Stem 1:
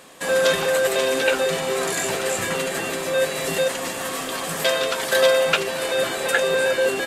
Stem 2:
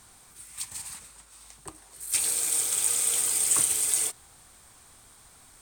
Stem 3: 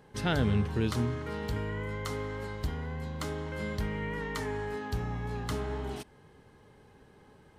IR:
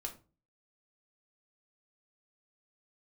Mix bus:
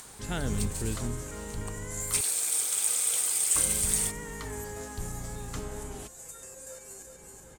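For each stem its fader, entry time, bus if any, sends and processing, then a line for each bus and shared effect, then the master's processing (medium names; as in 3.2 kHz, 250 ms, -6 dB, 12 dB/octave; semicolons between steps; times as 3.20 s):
-19.5 dB, 0.00 s, no send, echo send -8.5 dB, resonant high shelf 4.9 kHz +13.5 dB, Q 3; resonator arpeggio 8.4 Hz 74–460 Hz
-2.0 dB, 0.00 s, no send, no echo send, bass shelf 220 Hz -10 dB
-5.0 dB, 0.05 s, muted 2.21–3.55 s, no send, no echo send, octave divider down 2 oct, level -1 dB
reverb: none
echo: feedback delay 378 ms, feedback 36%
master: upward compressor, threshold -40 dBFS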